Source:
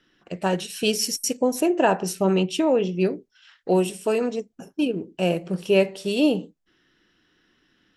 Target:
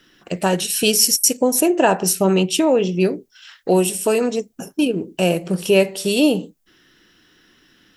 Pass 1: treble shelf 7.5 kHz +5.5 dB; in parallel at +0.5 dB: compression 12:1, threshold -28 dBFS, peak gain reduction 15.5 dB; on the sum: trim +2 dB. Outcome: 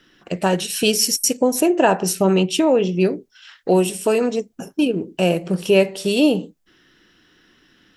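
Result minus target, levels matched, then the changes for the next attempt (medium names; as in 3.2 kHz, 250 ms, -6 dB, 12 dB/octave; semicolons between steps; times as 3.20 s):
8 kHz band -3.0 dB
change: treble shelf 7.5 kHz +15 dB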